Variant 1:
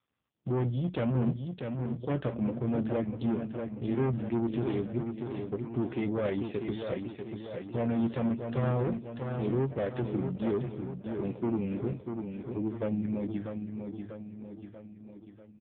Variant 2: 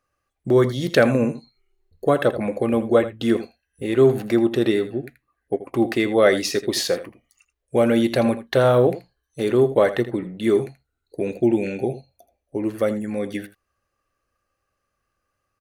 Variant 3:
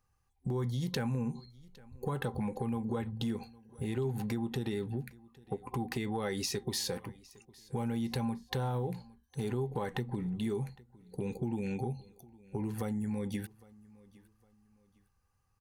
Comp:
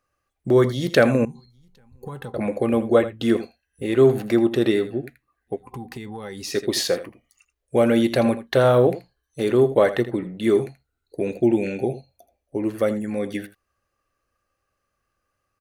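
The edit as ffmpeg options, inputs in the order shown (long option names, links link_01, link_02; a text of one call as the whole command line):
ffmpeg -i take0.wav -i take1.wav -i take2.wav -filter_complex "[2:a]asplit=2[link_01][link_02];[1:a]asplit=3[link_03][link_04][link_05];[link_03]atrim=end=1.252[link_06];[link_01]atrim=start=1.248:end=2.342[link_07];[link_04]atrim=start=2.338:end=5.62[link_08];[link_02]atrim=start=5.46:end=6.59[link_09];[link_05]atrim=start=6.43[link_10];[link_06][link_07]acrossfade=duration=0.004:curve1=hsin:curve2=hsin[link_11];[link_11][link_08]acrossfade=duration=0.004:curve1=hsin:curve2=hsin[link_12];[link_12][link_09]acrossfade=duration=0.16:curve1=tri:curve2=tri[link_13];[link_13][link_10]acrossfade=duration=0.16:curve1=tri:curve2=tri" out.wav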